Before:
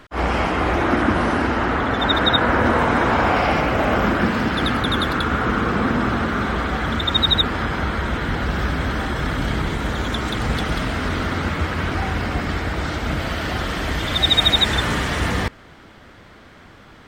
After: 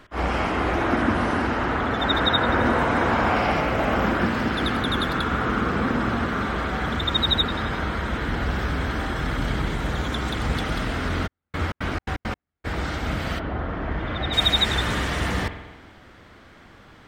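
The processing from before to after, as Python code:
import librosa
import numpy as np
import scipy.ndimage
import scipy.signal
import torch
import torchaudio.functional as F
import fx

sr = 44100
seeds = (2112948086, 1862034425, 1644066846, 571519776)

y = fx.lowpass(x, sr, hz=fx.line((13.38, 1100.0), (14.32, 2000.0)), slope=12, at=(13.38, 14.32), fade=0.02)
y = fx.rev_spring(y, sr, rt60_s=1.2, pass_ms=(47,), chirp_ms=70, drr_db=9.0)
y = fx.step_gate(y, sr, bpm=169, pattern='....xx.xx.x.x.', floor_db=-60.0, edge_ms=4.5, at=(11.26, 12.64), fade=0.02)
y = y * librosa.db_to_amplitude(-4.0)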